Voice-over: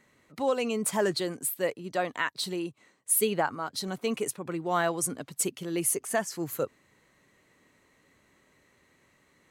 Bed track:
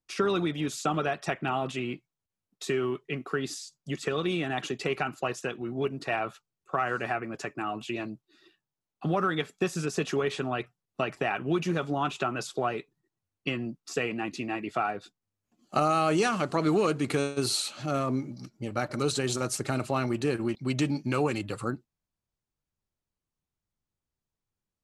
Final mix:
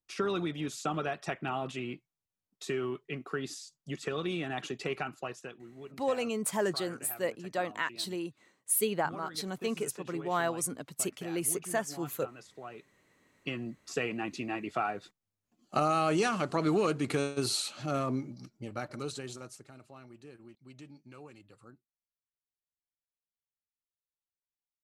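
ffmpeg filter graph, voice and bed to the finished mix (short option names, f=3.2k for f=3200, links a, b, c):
-filter_complex "[0:a]adelay=5600,volume=-3.5dB[a];[1:a]volume=9.5dB,afade=t=out:st=4.94:d=0.78:silence=0.237137,afade=t=in:st=12.61:d=1.33:silence=0.188365,afade=t=out:st=18.03:d=1.66:silence=0.0944061[b];[a][b]amix=inputs=2:normalize=0"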